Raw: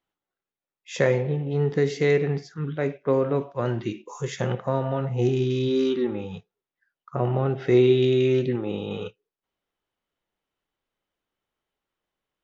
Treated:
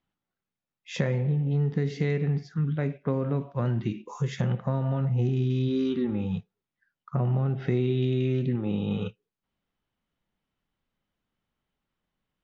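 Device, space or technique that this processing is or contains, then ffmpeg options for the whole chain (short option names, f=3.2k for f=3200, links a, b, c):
jukebox: -af "lowpass=5.2k,lowshelf=f=280:t=q:w=1.5:g=7.5,acompressor=threshold=-25dB:ratio=3"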